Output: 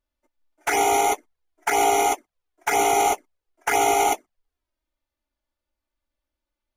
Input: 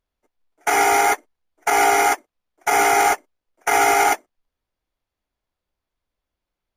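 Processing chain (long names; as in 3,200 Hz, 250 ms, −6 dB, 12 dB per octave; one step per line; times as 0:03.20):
flanger swept by the level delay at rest 3.4 ms, full sweep at −14 dBFS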